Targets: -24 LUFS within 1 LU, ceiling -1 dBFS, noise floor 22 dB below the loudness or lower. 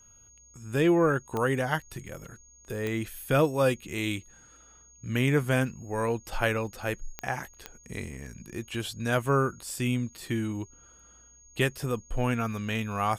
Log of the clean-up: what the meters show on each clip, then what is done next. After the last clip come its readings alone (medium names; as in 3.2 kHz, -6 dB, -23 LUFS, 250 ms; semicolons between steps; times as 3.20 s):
clicks found 4; steady tone 6.6 kHz; tone level -54 dBFS; loudness -29.0 LUFS; peak level -10.0 dBFS; loudness target -24.0 LUFS
-> de-click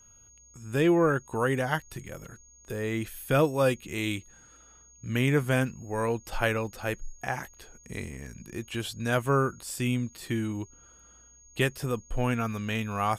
clicks found 0; steady tone 6.6 kHz; tone level -54 dBFS
-> band-stop 6.6 kHz, Q 30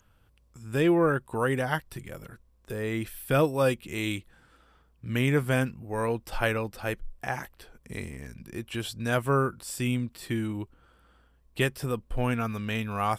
steady tone not found; loudness -29.0 LUFS; peak level -10.0 dBFS; loudness target -24.0 LUFS
-> trim +5 dB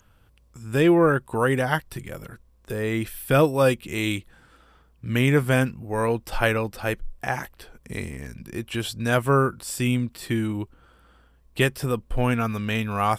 loudness -24.0 LUFS; peak level -5.0 dBFS; noise floor -58 dBFS